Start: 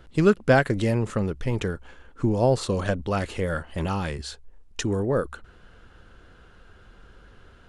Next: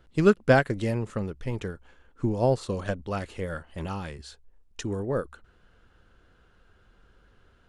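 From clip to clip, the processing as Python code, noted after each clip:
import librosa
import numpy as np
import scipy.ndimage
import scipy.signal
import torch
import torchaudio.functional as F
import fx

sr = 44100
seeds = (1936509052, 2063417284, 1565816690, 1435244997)

y = fx.upward_expand(x, sr, threshold_db=-31.0, expansion=1.5)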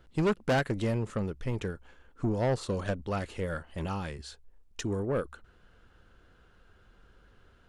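y = 10.0 ** (-22.0 / 20.0) * np.tanh(x / 10.0 ** (-22.0 / 20.0))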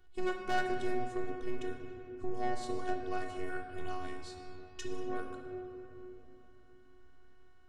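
y = fx.robotise(x, sr, hz=368.0)
y = fx.room_shoebox(y, sr, seeds[0], volume_m3=180.0, walls='hard', distance_m=0.39)
y = F.gain(torch.from_numpy(y), -5.0).numpy()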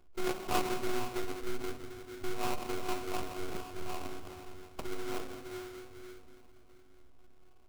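y = fx.sample_hold(x, sr, seeds[1], rate_hz=1800.0, jitter_pct=20)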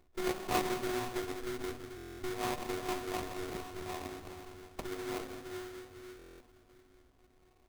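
y = fx.buffer_glitch(x, sr, at_s=(1.96, 6.17), block=1024, repeats=9)
y = fx.running_max(y, sr, window=5)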